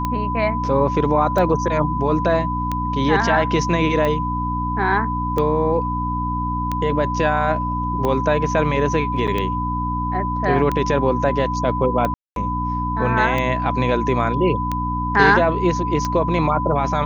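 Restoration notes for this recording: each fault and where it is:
hum 60 Hz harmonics 5 -25 dBFS
tick 45 rpm -10 dBFS
whine 1 kHz -23 dBFS
9.27–9.28 s: dropout 7.3 ms
12.14–12.36 s: dropout 222 ms

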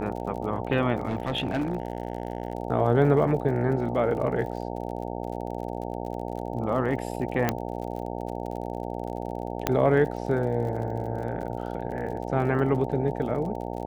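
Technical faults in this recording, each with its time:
buzz 60 Hz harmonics 15 -33 dBFS
crackle 44 per s -36 dBFS
1.07–2.53 s: clipped -22.5 dBFS
7.49 s: pop -9 dBFS
9.67 s: pop -8 dBFS

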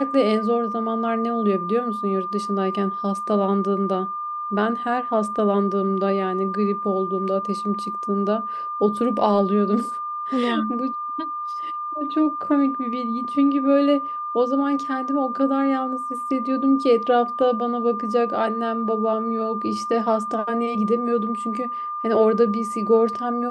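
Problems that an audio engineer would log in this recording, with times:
whine 1.2 kHz -26 dBFS

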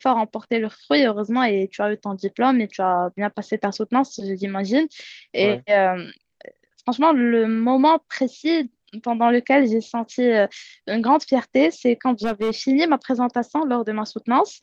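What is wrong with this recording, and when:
12.23–12.51 s: clipped -17.5 dBFS

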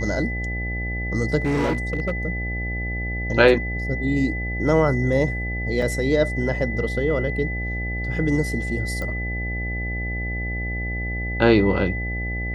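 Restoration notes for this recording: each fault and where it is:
buzz 60 Hz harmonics 14 -28 dBFS
whine 2 kHz -29 dBFS
1.45–2.11 s: clipped -18 dBFS
5.82 s: dropout 2.3 ms
9.02 s: pop -18 dBFS

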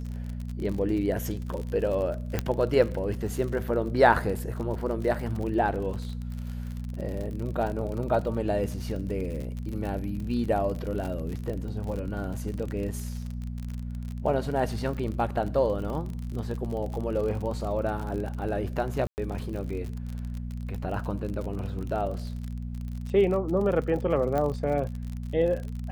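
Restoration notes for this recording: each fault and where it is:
crackle 48 per s -33 dBFS
hum 60 Hz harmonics 4 -34 dBFS
2.39 s: pop -12 dBFS
19.07–19.18 s: dropout 109 ms
24.38 s: pop -17 dBFS

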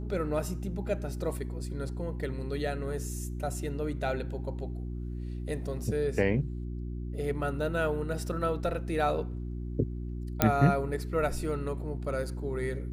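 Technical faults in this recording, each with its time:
hum 60 Hz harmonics 6 -36 dBFS
10.42 s: pop -6 dBFS

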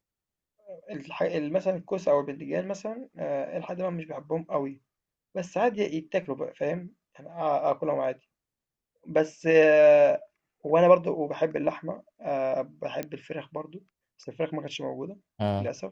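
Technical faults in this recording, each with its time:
13.03 s: pop -18 dBFS

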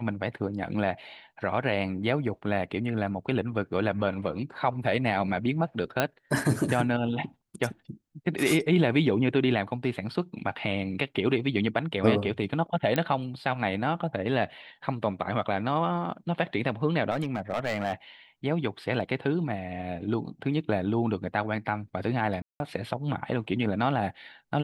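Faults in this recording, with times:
6.00 s: pop -9 dBFS
12.96 s: pop -13 dBFS
17.10–17.93 s: clipped -23 dBFS
22.42–22.60 s: dropout 181 ms

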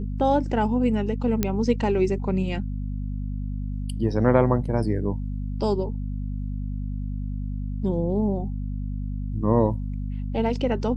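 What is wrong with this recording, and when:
hum 50 Hz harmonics 5 -29 dBFS
1.43 s: pop -8 dBFS

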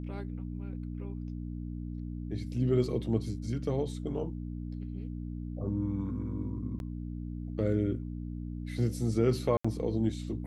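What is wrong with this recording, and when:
hum 60 Hz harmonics 5 -38 dBFS
6.79–6.80 s: dropout 11 ms
9.57–9.64 s: dropout 75 ms

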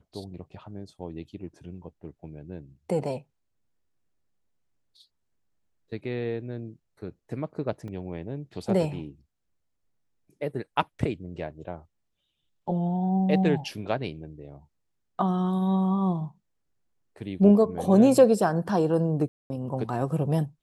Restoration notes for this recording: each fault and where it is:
7.88 s: dropout 2.1 ms
19.28–19.50 s: dropout 220 ms

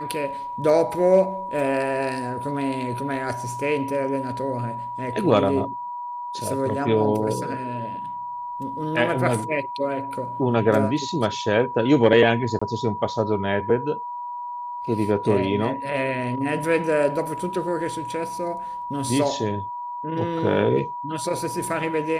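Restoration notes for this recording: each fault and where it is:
whine 970 Hz -29 dBFS
12.59–12.62 s: dropout 25 ms

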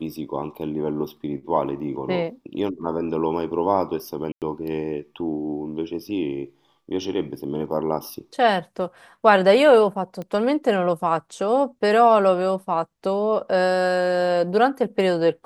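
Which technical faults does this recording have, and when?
4.32–4.42 s: dropout 98 ms
10.22 s: pop -21 dBFS

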